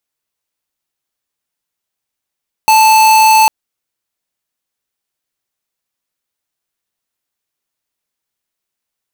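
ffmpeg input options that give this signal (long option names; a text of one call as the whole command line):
ffmpeg -f lavfi -i "aevalsrc='0.447*(2*lt(mod(877*t,1),0.5)-1)':duration=0.8:sample_rate=44100" out.wav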